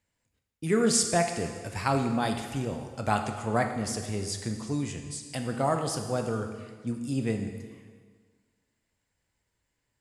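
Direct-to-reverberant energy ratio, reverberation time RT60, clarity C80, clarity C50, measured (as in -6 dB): 4.5 dB, 1.6 s, 8.0 dB, 6.5 dB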